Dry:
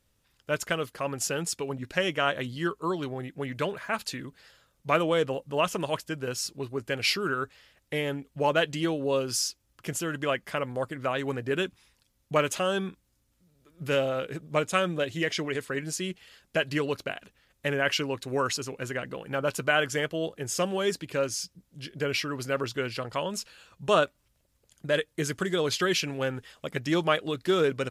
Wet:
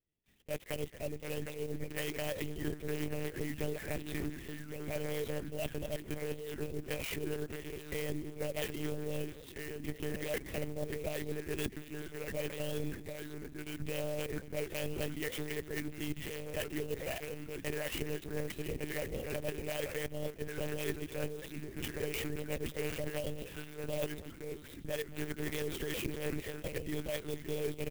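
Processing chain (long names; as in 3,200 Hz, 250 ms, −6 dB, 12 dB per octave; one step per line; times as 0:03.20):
camcorder AGC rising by 9.6 dB per second
Chebyshev band-stop filter 710–1,800 Hz, order 3
noise gate with hold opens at −56 dBFS
reversed playback
downward compressor 12 to 1, threshold −36 dBFS, peak gain reduction 16.5 dB
reversed playback
delay with pitch and tempo change per echo 669 ms, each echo −2 semitones, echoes 3, each echo −6 dB
on a send: single-tap delay 221 ms −18.5 dB
on the sum: one-pitch LPC vocoder at 8 kHz 150 Hz
converter with an unsteady clock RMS 0.045 ms
level +1.5 dB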